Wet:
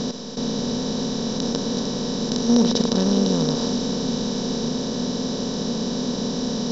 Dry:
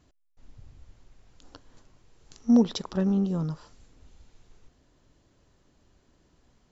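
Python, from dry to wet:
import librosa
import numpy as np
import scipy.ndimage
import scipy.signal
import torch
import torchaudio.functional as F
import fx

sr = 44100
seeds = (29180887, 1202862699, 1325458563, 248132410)

y = fx.bin_compress(x, sr, power=0.2)
y = fx.lowpass_res(y, sr, hz=5700.0, q=2.2)
y = fx.echo_split(y, sr, split_hz=380.0, low_ms=613, high_ms=105, feedback_pct=52, wet_db=-13)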